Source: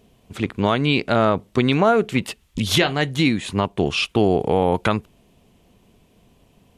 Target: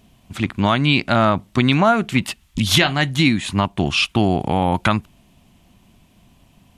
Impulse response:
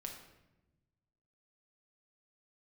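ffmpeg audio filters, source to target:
-af "equalizer=f=450:t=o:w=0.51:g=-14.5,volume=4dB"

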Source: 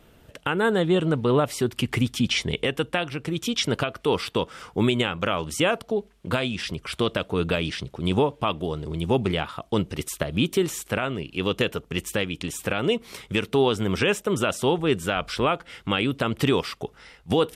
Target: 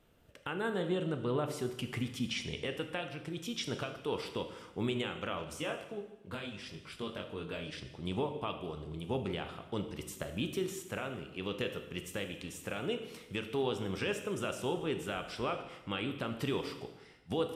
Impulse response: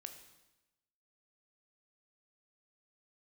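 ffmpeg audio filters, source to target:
-filter_complex "[0:a]asplit=3[a][b][c];[a]afade=t=out:st=5.53:d=0.02[d];[b]flanger=delay=19:depth=2.2:speed=1.2,afade=t=in:st=5.53:d=0.02,afade=t=out:st=7.71:d=0.02[e];[c]afade=t=in:st=7.71:d=0.02[f];[d][e][f]amix=inputs=3:normalize=0[g];[1:a]atrim=start_sample=2205[h];[g][h]afir=irnorm=-1:irlink=0,volume=-7.5dB"

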